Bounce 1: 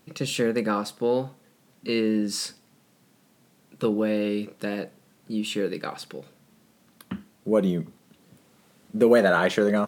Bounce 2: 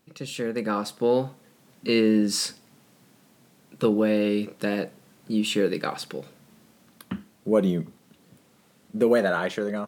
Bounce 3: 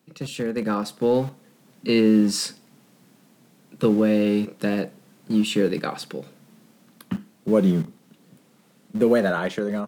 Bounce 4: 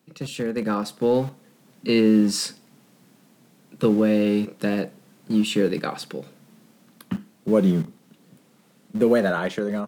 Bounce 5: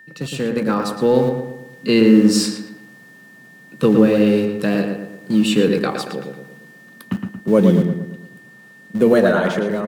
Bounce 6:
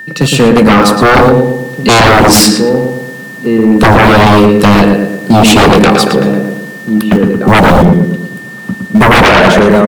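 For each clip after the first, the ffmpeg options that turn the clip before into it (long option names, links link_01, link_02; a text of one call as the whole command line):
ffmpeg -i in.wav -af "dynaudnorm=framelen=130:gausssize=11:maxgain=11.5dB,volume=-7dB" out.wav
ffmpeg -i in.wav -filter_complex "[0:a]equalizer=frequency=160:width_type=o:width=1.8:gain=5.5,acrossover=split=120|1100|1800[link_01][link_02][link_03][link_04];[link_01]acrusher=bits=6:mix=0:aa=0.000001[link_05];[link_05][link_02][link_03][link_04]amix=inputs=4:normalize=0" out.wav
ffmpeg -i in.wav -af anull out.wav
ffmpeg -i in.wav -filter_complex "[0:a]aeval=exprs='val(0)+0.00447*sin(2*PI*1800*n/s)':channel_layout=same,asplit=2[link_01][link_02];[link_02]adelay=114,lowpass=frequency=2500:poles=1,volume=-4.5dB,asplit=2[link_03][link_04];[link_04]adelay=114,lowpass=frequency=2500:poles=1,volume=0.47,asplit=2[link_05][link_06];[link_06]adelay=114,lowpass=frequency=2500:poles=1,volume=0.47,asplit=2[link_07][link_08];[link_08]adelay=114,lowpass=frequency=2500:poles=1,volume=0.47,asplit=2[link_09][link_10];[link_10]adelay=114,lowpass=frequency=2500:poles=1,volume=0.47,asplit=2[link_11][link_12];[link_12]adelay=114,lowpass=frequency=2500:poles=1,volume=0.47[link_13];[link_03][link_05][link_07][link_09][link_11][link_13]amix=inputs=6:normalize=0[link_14];[link_01][link_14]amix=inputs=2:normalize=0,volume=4.5dB" out.wav
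ffmpeg -i in.wav -filter_complex "[0:a]asplit=2[link_01][link_02];[link_02]adelay=1574,volume=-13dB,highshelf=frequency=4000:gain=-35.4[link_03];[link_01][link_03]amix=inputs=2:normalize=0,aeval=exprs='0.891*sin(PI/2*5.62*val(0)/0.891)':channel_layout=same" out.wav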